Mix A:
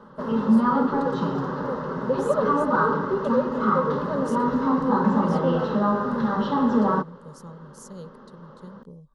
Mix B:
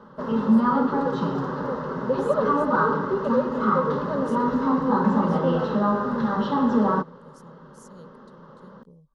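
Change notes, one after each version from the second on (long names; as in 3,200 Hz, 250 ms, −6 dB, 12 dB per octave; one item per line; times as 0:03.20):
speech −7.0 dB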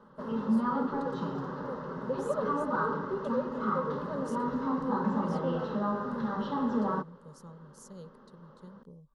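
background −9.0 dB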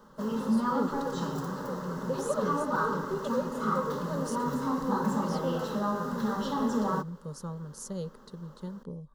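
speech +11.0 dB
background: remove high-frequency loss of the air 280 metres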